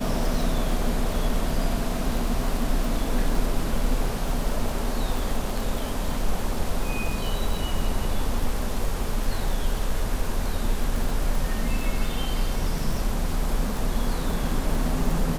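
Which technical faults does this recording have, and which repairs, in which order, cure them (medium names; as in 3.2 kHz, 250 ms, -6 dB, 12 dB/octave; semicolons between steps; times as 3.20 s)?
crackle 57 per s -28 dBFS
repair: de-click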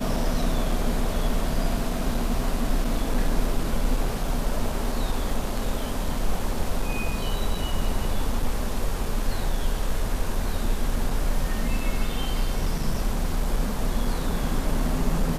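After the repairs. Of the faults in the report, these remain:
nothing left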